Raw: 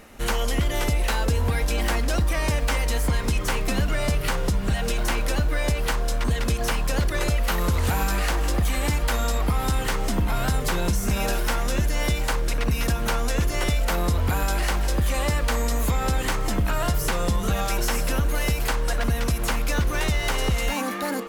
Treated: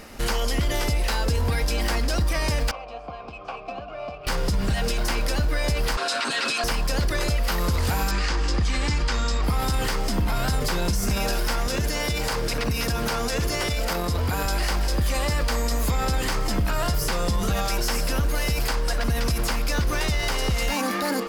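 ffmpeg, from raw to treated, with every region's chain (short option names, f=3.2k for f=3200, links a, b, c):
-filter_complex "[0:a]asettb=1/sr,asplit=3[a][b][c];[a]atrim=end=2.714[d];[b]atrim=start=2.71:end=4.27,asetpts=PTS-STARTPTS,afade=t=in:d=0.004:c=qsin,afade=t=out:st=1.556:d=0.004:c=qsin,asplit=3[e][f][g];[e]bandpass=f=730:t=q:w=8,volume=0dB[h];[f]bandpass=f=1.09k:t=q:w=8,volume=-6dB[i];[g]bandpass=f=2.44k:t=q:w=8,volume=-9dB[j];[h][i][j]amix=inputs=3:normalize=0,lowshelf=f=150:g=11.5,adynamicsmooth=sensitivity=7:basefreq=4.3k[k];[c]atrim=start=4.266[l];[d][k]acrossfade=d=0.004:c1=hsin:c2=qsin[m];[m][l]acrossfade=d=0.004:c1=qsin:c2=hsin,asettb=1/sr,asplit=3[n][o][p];[n]atrim=end=5.974[q];[o]atrim=start=5.97:end=6.64,asetpts=PTS-STARTPTS,afade=t=in:d=0.004:c=qsin,afade=t=out:st=0.666:d=0.004:c=qsin,highpass=f=260:w=0.5412,highpass=f=260:w=1.3066,equalizer=f=280:t=q:w=4:g=-4,equalizer=f=440:t=q:w=4:g=-3,equalizer=f=1.4k:t=q:w=4:g=10,equalizer=f=2.6k:t=q:w=4:g=9,equalizer=f=4k:t=q:w=4:g=9,equalizer=f=8.3k:t=q:w=4:g=4,lowpass=f=9.9k:w=0.5412,lowpass=f=9.9k:w=1.3066,aecho=1:1:7.4:0.76,atrim=end_sample=29547[r];[p]atrim=start=6.636[s];[q][r]acrossfade=d=0.004:c1=hsin:c2=qsin[t];[t][s]acrossfade=d=0.004:c1=qsin:c2=hsin,asettb=1/sr,asplit=3[u][v][w];[u]atrim=end=8.114[x];[v]atrim=start=8.11:end=9.44,asetpts=PTS-STARTPTS,afade=t=in:d=0.004:c=qsin,afade=t=out:st=1.326:d=0.004:c=qsin,equalizer=f=650:w=3.7:g=-10,acrusher=bits=9:mode=log:mix=0:aa=0.000001,lowpass=f=7.3k:w=0.5412,lowpass=f=7.3k:w=1.3066[y];[w]atrim=start=9.436[z];[x][y]acrossfade=d=0.004:c1=hsin:c2=qsin[aa];[aa][z]acrossfade=d=0.004:c1=qsin:c2=hsin,asettb=1/sr,asplit=3[ab][ac][ad];[ab]atrim=end=11.674[ae];[ac]atrim=start=11.67:end=14.46,asetpts=PTS-STARTPTS,afade=t=in:d=0.004:c=qsin,afade=t=out:st=2.786:d=0.004:c=qsin,highpass=63,aeval=exprs='val(0)+0.01*sin(2*PI*450*n/s)':c=same[af];[ad]atrim=start=14.456[ag];[ae][af]acrossfade=d=0.004:c1=hsin:c2=qsin[ah];[ah][ag]acrossfade=d=0.004:c1=qsin:c2=hsin,equalizer=f=4.9k:t=o:w=0.28:g=9.5,alimiter=limit=-21dB:level=0:latency=1:release=29,volume=4.5dB"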